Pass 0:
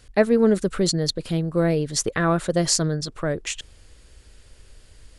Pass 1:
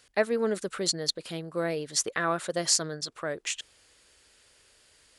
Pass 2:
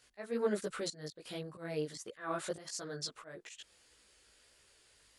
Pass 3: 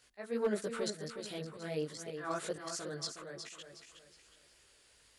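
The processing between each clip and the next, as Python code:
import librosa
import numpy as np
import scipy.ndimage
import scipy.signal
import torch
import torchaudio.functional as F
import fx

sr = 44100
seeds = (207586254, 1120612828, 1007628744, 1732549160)

y1 = fx.highpass(x, sr, hz=760.0, slope=6)
y1 = y1 * librosa.db_to_amplitude(-2.5)
y2 = fx.auto_swell(y1, sr, attack_ms=239.0)
y2 = fx.chorus_voices(y2, sr, voices=2, hz=1.4, base_ms=17, depth_ms=3.0, mix_pct=50)
y2 = y2 * librosa.db_to_amplitude(-2.0)
y3 = np.clip(10.0 ** (23.5 / 20.0) * y2, -1.0, 1.0) / 10.0 ** (23.5 / 20.0)
y3 = fx.echo_feedback(y3, sr, ms=365, feedback_pct=36, wet_db=-8.0)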